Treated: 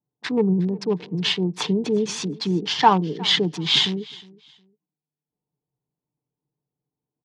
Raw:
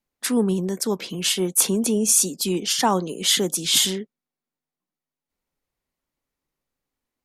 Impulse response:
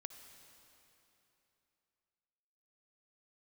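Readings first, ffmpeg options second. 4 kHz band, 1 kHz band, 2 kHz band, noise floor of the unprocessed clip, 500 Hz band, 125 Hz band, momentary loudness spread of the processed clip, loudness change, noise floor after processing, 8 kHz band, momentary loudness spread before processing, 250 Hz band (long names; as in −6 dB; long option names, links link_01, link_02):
+1.0 dB, +6.0 dB, +3.0 dB, below −85 dBFS, +0.5 dB, +4.5 dB, 9 LU, −1.0 dB, below −85 dBFS, −16.5 dB, 7 LU, +1.0 dB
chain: -filter_complex "[0:a]equalizer=frequency=1600:width_type=o:width=0.62:gain=4,aecho=1:1:6.7:0.48,acrossover=split=680[link_01][link_02];[link_02]aeval=exprs='sgn(val(0))*max(abs(val(0))-0.0355,0)':channel_layout=same[link_03];[link_01][link_03]amix=inputs=2:normalize=0,highpass=120,equalizer=frequency=130:width_type=q:width=4:gain=7,equalizer=frequency=270:width_type=q:width=4:gain=-7,equalizer=frequency=570:width_type=q:width=4:gain=-10,equalizer=frequency=940:width_type=q:width=4:gain=6,equalizer=frequency=1400:width_type=q:width=4:gain=-4,lowpass=frequency=4200:width=0.5412,lowpass=frequency=4200:width=1.3066,aecho=1:1:361|722:0.0794|0.0191,volume=4dB"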